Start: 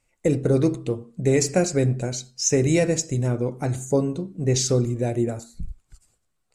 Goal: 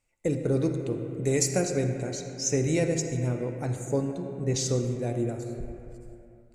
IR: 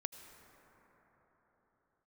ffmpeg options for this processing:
-filter_complex "[0:a]asettb=1/sr,asplit=3[s0][s1][s2];[s0]atrim=end=0.984[s3];[s1]atrim=start=0.98:end=1.62,asetpts=PTS-STARTPTS,afade=t=in:d=0.004:c=qsin,afade=t=out:st=0.636:d=0.004:c=qsin,highshelf=f=6400:g=10.5[s4];[s2]atrim=start=1.616[s5];[s3][s4]acrossfade=d=0.004:c1=hsin:c2=qsin[s6];[s6][s5]acrossfade=d=0.004:c1=qsin:c2=hsin[s7];[1:a]atrim=start_sample=2205,asetrate=66150,aresample=44100[s8];[s7][s8]afir=irnorm=-1:irlink=0"

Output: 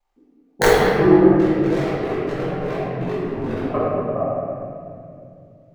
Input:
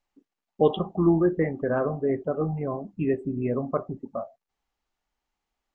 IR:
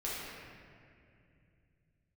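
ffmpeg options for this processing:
-filter_complex "[0:a]equalizer=f=760:w=1:g=8,acontrast=55,asettb=1/sr,asplit=3[s0][s1][s2];[s0]atrim=end=1.364[s3];[s1]atrim=start=1.36:end=3.65,asetpts=PTS-STARTPTS,afade=t=in:d=0.004:c=qsin,afade=t=out:st=2.286:d=0.004:c=qsin,asoftclip=type=hard:threshold=0.0708[s4];[s2]atrim=start=3.646[s5];[s3][s4]acrossfade=d=0.004:c1=hsin:c2=qsin[s6];[s6][s5]acrossfade=d=0.004:c1=qsin:c2=hsin,aeval=exprs='val(0)*sin(2*PI*23*n/s)':c=same,aeval=exprs='(mod(1.58*val(0)+1,2)-1)/1.58':c=same[s7];[1:a]atrim=start_sample=2205[s8];[s7][s8]afir=irnorm=-1:irlink=0,volume=0.841"

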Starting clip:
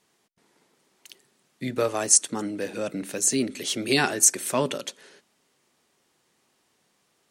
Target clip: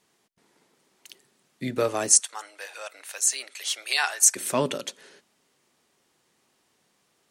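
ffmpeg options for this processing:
-filter_complex "[0:a]asplit=3[s0][s1][s2];[s0]afade=t=out:st=2.19:d=0.02[s3];[s1]highpass=f=760:w=0.5412,highpass=f=760:w=1.3066,afade=t=in:st=2.19:d=0.02,afade=t=out:st=4.35:d=0.02[s4];[s2]afade=t=in:st=4.35:d=0.02[s5];[s3][s4][s5]amix=inputs=3:normalize=0"

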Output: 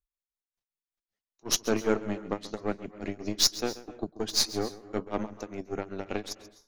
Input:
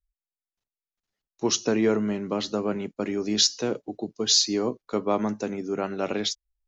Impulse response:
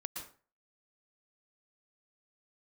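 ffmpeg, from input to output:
-filter_complex "[0:a]aeval=exprs='0.447*(cos(1*acos(clip(val(0)/0.447,-1,1)))-cos(1*PI/2))+0.0251*(cos(7*acos(clip(val(0)/0.447,-1,1)))-cos(7*PI/2))+0.0316*(cos(8*acos(clip(val(0)/0.447,-1,1)))-cos(8*PI/2))':c=same,tremolo=f=5.2:d=0.97,asplit=2[s0][s1];[1:a]atrim=start_sample=2205,adelay=134[s2];[s1][s2]afir=irnorm=-1:irlink=0,volume=0.211[s3];[s0][s3]amix=inputs=2:normalize=0"

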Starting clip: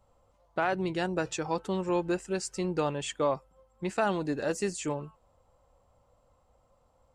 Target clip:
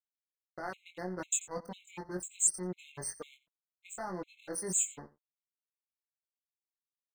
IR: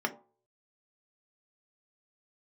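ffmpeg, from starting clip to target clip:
-filter_complex "[0:a]afftfilt=real='re*gte(hypot(re,im),0.00562)':imag='im*gte(hypot(re,im),0.00562)':win_size=1024:overlap=0.75,flanger=delay=4:depth=2.1:regen=-7:speed=0.58:shape=sinusoidal,areverse,acompressor=threshold=0.0126:ratio=5,areverse,aexciter=amount=14.3:drive=4.1:freq=7100,aeval=exprs='sgn(val(0))*max(abs(val(0))-0.00447,0)':c=same,asplit=2[s0][s1];[s1]adelay=22,volume=0.631[s2];[s0][s2]amix=inputs=2:normalize=0,asplit=2[s3][s4];[s4]aecho=0:1:88:0.112[s5];[s3][s5]amix=inputs=2:normalize=0,afftfilt=real='re*gt(sin(2*PI*2*pts/sr)*(1-2*mod(floor(b*sr/1024/2100),2)),0)':imag='im*gt(sin(2*PI*2*pts/sr)*(1-2*mod(floor(b*sr/1024/2100),2)),0)':win_size=1024:overlap=0.75,volume=1.33"

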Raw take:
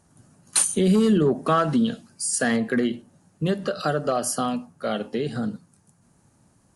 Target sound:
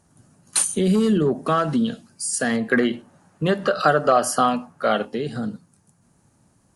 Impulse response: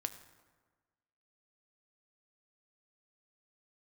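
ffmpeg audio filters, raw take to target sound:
-filter_complex "[0:a]asettb=1/sr,asplit=3[s0][s1][s2];[s0]atrim=end=2.714[s3];[s1]atrim=start=2.71:end=5.05,asetpts=PTS-STARTPTS,afade=t=in:d=0.004:c=qsin,afade=t=out:st=2.336:d=0.004:c=qsin,equalizer=f=1200:t=o:w=2.7:g=10[s4];[s2]atrim=start=5.046[s5];[s3][s4]acrossfade=d=0.004:c1=hsin:c2=qsin[s6];[s6][s5]acrossfade=d=0.004:c1=qsin:c2=hsin"

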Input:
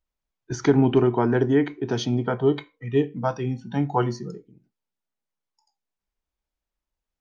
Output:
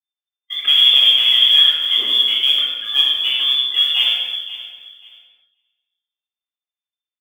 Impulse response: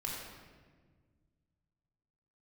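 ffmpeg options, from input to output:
-filter_complex "[0:a]acrossover=split=860[s0][s1];[s1]asoftclip=type=hard:threshold=0.0224[s2];[s0][s2]amix=inputs=2:normalize=0,bandreject=f=50:t=h:w=6,bandreject=f=100:t=h:w=6,bandreject=f=150:t=h:w=6,bandreject=f=200:t=h:w=6,bandreject=f=250:t=h:w=6,bandreject=f=300:t=h:w=6,bandreject=f=350:t=h:w=6,bandreject=f=400:t=h:w=6,bandreject=f=450:t=h:w=6,asplit=2[s3][s4];[s4]aeval=exprs='0.133*(abs(mod(val(0)/0.133+3,4)-2)-1)':c=same,volume=0.708[s5];[s3][s5]amix=inputs=2:normalize=0,adynamicequalizer=threshold=0.0447:dfrequency=290:dqfactor=0.85:tfrequency=290:tqfactor=0.85:attack=5:release=100:ratio=0.375:range=1.5:mode=boostabove:tftype=bell,aecho=1:1:528|1056|1584:0.158|0.0412|0.0107,lowpass=f=3100:t=q:w=0.5098,lowpass=f=3100:t=q:w=0.6013,lowpass=f=3100:t=q:w=0.9,lowpass=f=3100:t=q:w=2.563,afreqshift=-3600,highpass=f=180:w=0.5412,highpass=f=180:w=1.3066,acrusher=bits=7:mode=log:mix=0:aa=0.000001,agate=range=0.158:threshold=0.00447:ratio=16:detection=peak[s6];[1:a]atrim=start_sample=2205,afade=t=out:st=0.42:d=0.01,atrim=end_sample=18963,asetrate=43218,aresample=44100[s7];[s6][s7]afir=irnorm=-1:irlink=0,volume=1.19"

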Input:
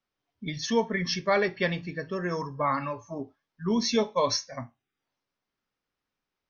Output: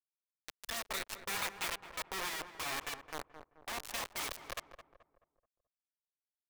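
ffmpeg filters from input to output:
-filter_complex "[0:a]asplit=3[s0][s1][s2];[s0]bandpass=f=530:t=q:w=8,volume=1[s3];[s1]bandpass=f=1840:t=q:w=8,volume=0.501[s4];[s2]bandpass=f=2480:t=q:w=8,volume=0.355[s5];[s3][s4][s5]amix=inputs=3:normalize=0,acrusher=bits=4:dc=4:mix=0:aa=0.000001,afftfilt=real='re*lt(hypot(re,im),0.0282)':imag='im*lt(hypot(re,im),0.0282)':win_size=1024:overlap=0.75,equalizer=f=160:w=0.98:g=-11,asplit=2[s6][s7];[s7]adelay=215,lowpass=f=1300:p=1,volume=0.355,asplit=2[s8][s9];[s9]adelay=215,lowpass=f=1300:p=1,volume=0.44,asplit=2[s10][s11];[s11]adelay=215,lowpass=f=1300:p=1,volume=0.44,asplit=2[s12][s13];[s13]adelay=215,lowpass=f=1300:p=1,volume=0.44,asplit=2[s14][s15];[s15]adelay=215,lowpass=f=1300:p=1,volume=0.44[s16];[s6][s8][s10][s12][s14][s16]amix=inputs=6:normalize=0,volume=2.82"

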